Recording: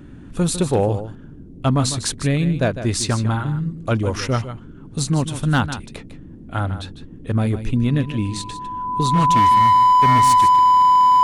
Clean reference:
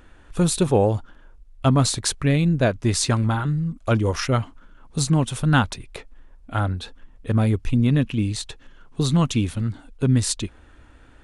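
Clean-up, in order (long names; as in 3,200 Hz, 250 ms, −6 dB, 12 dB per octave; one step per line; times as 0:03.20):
clipped peaks rebuilt −10 dBFS
notch filter 1,000 Hz, Q 30
noise reduction from a noise print 10 dB
echo removal 152 ms −11.5 dB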